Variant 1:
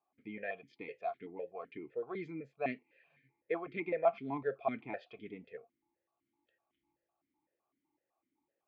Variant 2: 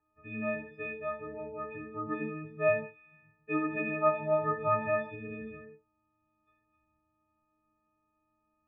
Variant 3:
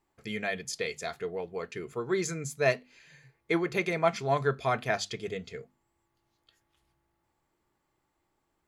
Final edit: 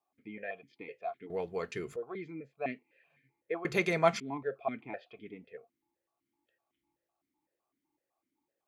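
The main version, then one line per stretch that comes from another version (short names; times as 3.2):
1
1.3–1.96 from 3
3.65–4.2 from 3
not used: 2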